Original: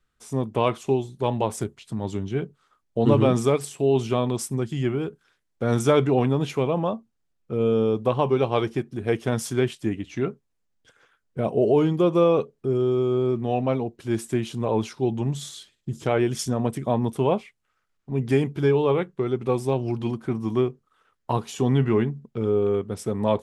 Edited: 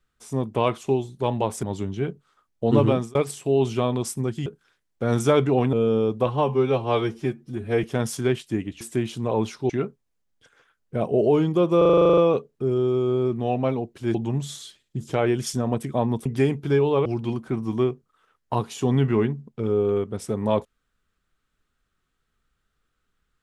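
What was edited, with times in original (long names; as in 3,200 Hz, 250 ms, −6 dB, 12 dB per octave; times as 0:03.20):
0:01.63–0:01.97: remove
0:03.21–0:03.49: fade out
0:04.80–0:05.06: remove
0:06.33–0:07.58: remove
0:08.11–0:09.16: time-stretch 1.5×
0:12.21: stutter 0.04 s, 11 plays
0:14.18–0:15.07: move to 0:10.13
0:17.18–0:18.18: remove
0:18.98–0:19.83: remove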